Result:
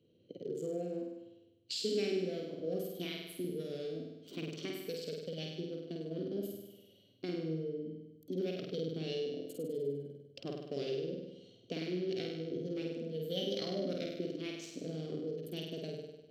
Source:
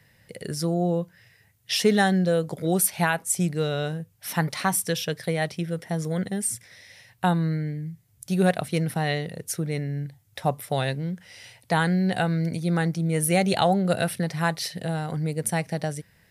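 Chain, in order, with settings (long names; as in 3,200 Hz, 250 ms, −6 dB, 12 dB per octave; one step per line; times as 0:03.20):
adaptive Wiener filter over 25 samples
downward compressor 2 to 1, threshold −35 dBFS, peak gain reduction 11 dB
formant filter i
formants moved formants +6 semitones
flutter between parallel walls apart 8.6 metres, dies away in 1 s
level +8 dB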